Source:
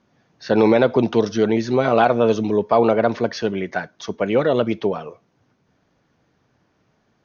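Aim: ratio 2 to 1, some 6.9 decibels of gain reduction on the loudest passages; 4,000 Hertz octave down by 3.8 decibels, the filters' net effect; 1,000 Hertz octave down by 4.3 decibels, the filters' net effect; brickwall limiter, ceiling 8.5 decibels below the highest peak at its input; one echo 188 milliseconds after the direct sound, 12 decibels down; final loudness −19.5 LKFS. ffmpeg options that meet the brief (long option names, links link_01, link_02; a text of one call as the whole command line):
ffmpeg -i in.wav -af "equalizer=frequency=1000:width_type=o:gain=-6.5,equalizer=frequency=4000:width_type=o:gain=-4.5,acompressor=threshold=-25dB:ratio=2,alimiter=limit=-20dB:level=0:latency=1,aecho=1:1:188:0.251,volume=11dB" out.wav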